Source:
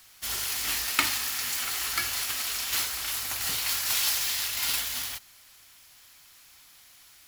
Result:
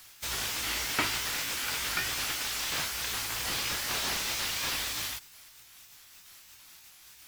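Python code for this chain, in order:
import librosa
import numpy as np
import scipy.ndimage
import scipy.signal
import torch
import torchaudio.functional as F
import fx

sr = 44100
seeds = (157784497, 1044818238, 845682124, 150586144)

y = fx.pitch_ramps(x, sr, semitones=3.5, every_ms=314)
y = fx.slew_limit(y, sr, full_power_hz=120.0)
y = F.gain(torch.from_numpy(y), 2.5).numpy()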